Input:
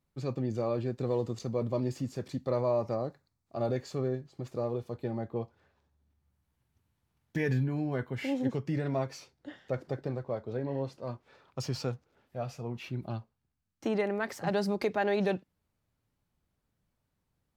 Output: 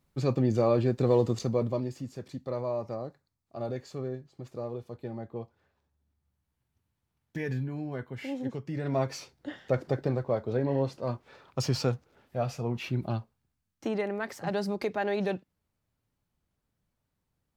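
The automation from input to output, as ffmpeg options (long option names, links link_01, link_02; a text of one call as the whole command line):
ffmpeg -i in.wav -af "volume=16.5dB,afade=type=out:start_time=1.35:duration=0.55:silence=0.298538,afade=type=in:start_time=8.74:duration=0.4:silence=0.334965,afade=type=out:start_time=12.99:duration=0.95:silence=0.446684" out.wav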